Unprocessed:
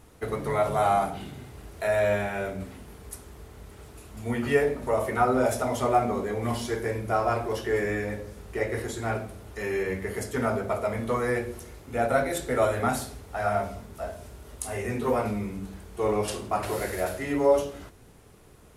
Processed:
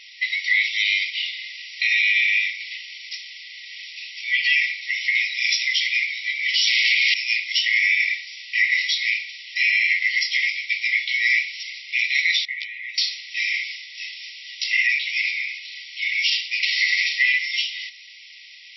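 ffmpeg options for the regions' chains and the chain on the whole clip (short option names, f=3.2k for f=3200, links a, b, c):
-filter_complex "[0:a]asettb=1/sr,asplit=3[a][b][c];[a]atrim=end=6.674[d];[b]atrim=start=6.67:end=7.14,asetpts=PTS-STARTPTS,afade=t=in:d=0.004:c=qsin,afade=t=out:st=0.466:d=0.004:c=qsin,aecho=1:1:2.8:0.37,atrim=end_sample=20727,asplit=2[e][f];[f]highpass=f=720:p=1,volume=30dB,asoftclip=type=tanh:threshold=-13.5dB[g];[e][g]amix=inputs=2:normalize=0,lowpass=f=6.7k:p=1,volume=-6dB[h];[c]atrim=start=7.136[i];[d][h]acrossfade=d=0.004:c1=hsin:c2=qsin[j];[j][i]acrossfade=d=0.004:c1=qsin:c2=hsin,asettb=1/sr,asplit=3[k][l][m];[k]atrim=end=12.454[n];[l]atrim=start=12.45:end=12.98,asetpts=PTS-STARTPTS,afade=t=in:d=0.004:c=qsin,afade=t=out:st=0.526:d=0.004:c=qsin,asuperpass=centerf=600:order=4:qfactor=0.58,asoftclip=type=hard:threshold=-14dB[o];[m]atrim=start=12.976[p];[n][o]acrossfade=d=0.004:c1=hsin:c2=qsin[q];[q][p]acrossfade=d=0.004:c1=qsin:c2=hsin,afftfilt=real='re*between(b*sr/4096,1900,5700)':imag='im*between(b*sr/4096,1900,5700)':win_size=4096:overlap=0.75,acontrast=79,alimiter=level_in=25.5dB:limit=-1dB:release=50:level=0:latency=1,volume=-8.5dB"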